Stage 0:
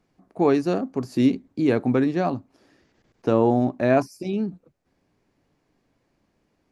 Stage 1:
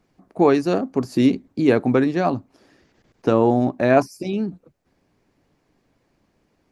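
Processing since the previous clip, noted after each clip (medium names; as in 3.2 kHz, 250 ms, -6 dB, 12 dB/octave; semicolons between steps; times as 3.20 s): harmonic-percussive split percussive +4 dB; trim +1.5 dB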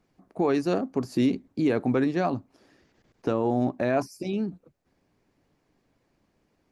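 peak limiter -10 dBFS, peak gain reduction 6.5 dB; trim -4.5 dB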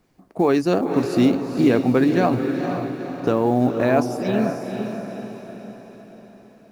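companded quantiser 8-bit; echo that smears into a reverb 481 ms, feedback 50%, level -6 dB; trim +6 dB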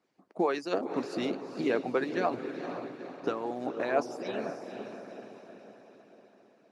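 band-pass 260–6600 Hz; harmonic-percussive split harmonic -13 dB; trim -5.5 dB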